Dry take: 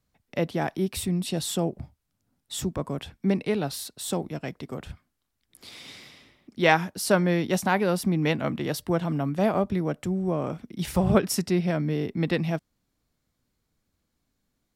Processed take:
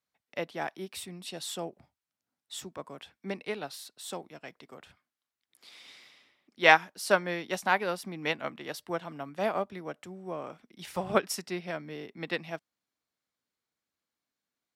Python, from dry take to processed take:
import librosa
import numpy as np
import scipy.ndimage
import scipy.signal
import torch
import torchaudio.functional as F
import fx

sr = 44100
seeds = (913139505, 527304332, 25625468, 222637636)

y = fx.highpass(x, sr, hz=1000.0, slope=6)
y = fx.high_shelf(y, sr, hz=5800.0, db=-7.5)
y = fx.upward_expand(y, sr, threshold_db=-40.0, expansion=1.5)
y = F.gain(torch.from_numpy(y), 5.0).numpy()